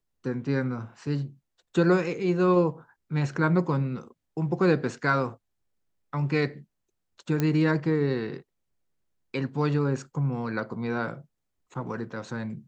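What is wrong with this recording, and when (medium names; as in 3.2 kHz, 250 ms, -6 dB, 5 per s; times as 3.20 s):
7.40 s: pop -13 dBFS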